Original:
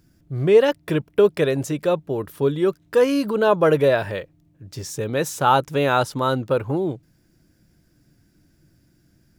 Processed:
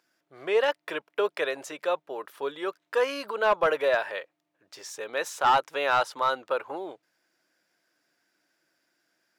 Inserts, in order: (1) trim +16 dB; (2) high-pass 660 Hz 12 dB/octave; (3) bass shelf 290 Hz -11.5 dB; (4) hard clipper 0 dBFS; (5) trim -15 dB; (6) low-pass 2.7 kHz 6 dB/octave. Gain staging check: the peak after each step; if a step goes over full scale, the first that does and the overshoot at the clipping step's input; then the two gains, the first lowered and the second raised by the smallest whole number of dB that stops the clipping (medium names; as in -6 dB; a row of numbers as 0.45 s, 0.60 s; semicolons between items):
+11.5 dBFS, +11.0 dBFS, +9.5 dBFS, 0.0 dBFS, -15.0 dBFS, -15.0 dBFS; step 1, 9.5 dB; step 1 +6 dB, step 5 -5 dB